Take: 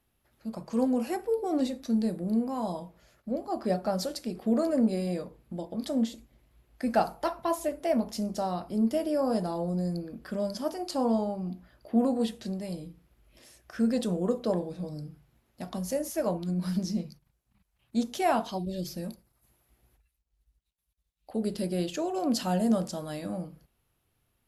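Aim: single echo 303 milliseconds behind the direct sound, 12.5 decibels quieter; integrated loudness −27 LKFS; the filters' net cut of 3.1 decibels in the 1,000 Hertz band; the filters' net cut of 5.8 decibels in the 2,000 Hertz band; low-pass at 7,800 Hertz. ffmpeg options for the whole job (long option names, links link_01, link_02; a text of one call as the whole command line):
ffmpeg -i in.wav -af "lowpass=7800,equalizer=frequency=1000:width_type=o:gain=-3.5,equalizer=frequency=2000:width_type=o:gain=-6.5,aecho=1:1:303:0.237,volume=4dB" out.wav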